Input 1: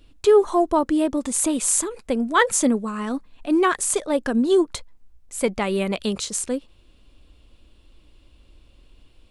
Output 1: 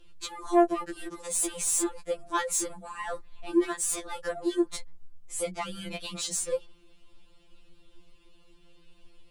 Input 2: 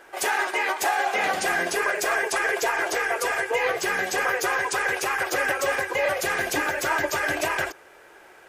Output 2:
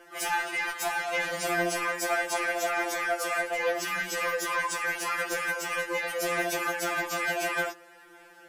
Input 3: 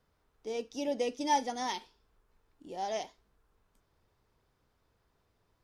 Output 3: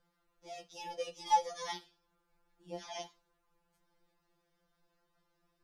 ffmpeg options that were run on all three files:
ffmpeg -i in.wav -filter_complex "[0:a]acrossover=split=4700[link_01][link_02];[link_01]alimiter=limit=-15dB:level=0:latency=1:release=336[link_03];[link_03][link_02]amix=inputs=2:normalize=0,asoftclip=type=tanh:threshold=-19.5dB,afftfilt=real='re*2.83*eq(mod(b,8),0)':imag='im*2.83*eq(mod(b,8),0)':win_size=2048:overlap=0.75" out.wav

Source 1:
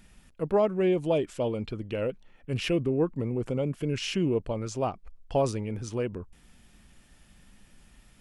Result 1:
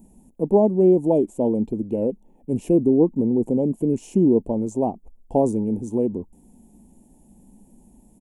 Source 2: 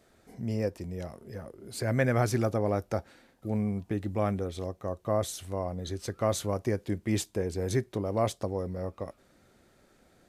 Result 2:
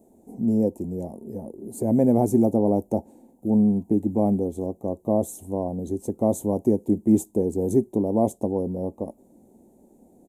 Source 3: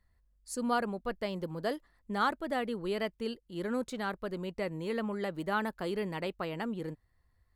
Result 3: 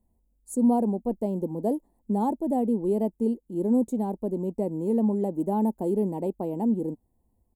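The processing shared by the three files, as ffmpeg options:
ffmpeg -i in.wav -af "aexciter=amount=2.4:drive=7.6:freq=4100,firequalizer=gain_entry='entry(130,0);entry(220,14);entry(380,9);entry(570,4);entry(890,6);entry(1300,-27);entry(2600,-18);entry(4800,-29);entry(6900,-9)':delay=0.05:min_phase=1" out.wav

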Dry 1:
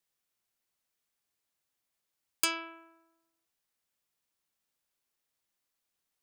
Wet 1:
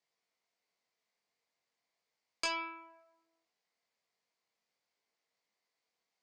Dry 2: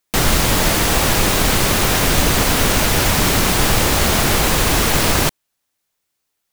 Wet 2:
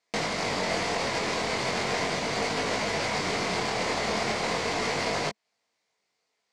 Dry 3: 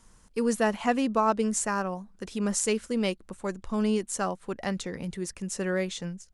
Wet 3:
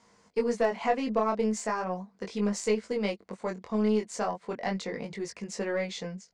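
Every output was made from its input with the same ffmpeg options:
ffmpeg -i in.wav -af "alimiter=limit=-12dB:level=0:latency=1:release=71,acompressor=threshold=-30dB:ratio=2,flanger=delay=19:depth=4.6:speed=0.37,highpass=120,equalizer=frequency=210:width_type=q:width=4:gain=4,equalizer=frequency=460:width_type=q:width=4:gain=9,equalizer=frequency=690:width_type=q:width=4:gain=9,equalizer=frequency=1000:width_type=q:width=4:gain=6,equalizer=frequency=2100:width_type=q:width=4:gain=9,equalizer=frequency=4600:width_type=q:width=4:gain=6,lowpass=frequency=7300:width=0.5412,lowpass=frequency=7300:width=1.3066,aeval=exprs='0.188*(cos(1*acos(clip(val(0)/0.188,-1,1)))-cos(1*PI/2))+0.00841*(cos(4*acos(clip(val(0)/0.188,-1,1)))-cos(4*PI/2))':channel_layout=same" out.wav

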